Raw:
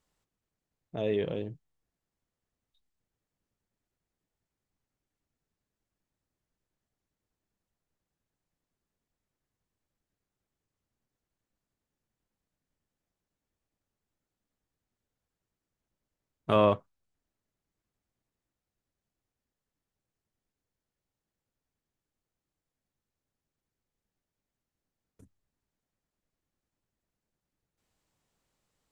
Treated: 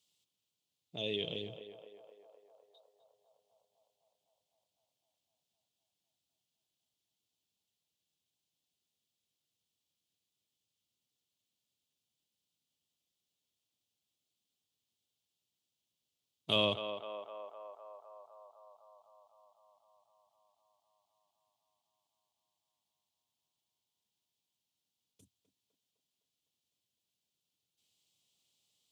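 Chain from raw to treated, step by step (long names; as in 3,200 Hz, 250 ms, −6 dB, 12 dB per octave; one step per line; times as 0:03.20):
high-pass filter 88 Hz 24 dB per octave
high shelf with overshoot 2,300 Hz +12 dB, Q 3
on a send: feedback echo with a band-pass in the loop 254 ms, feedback 82%, band-pass 860 Hz, level −6.5 dB
on the sum: level −9 dB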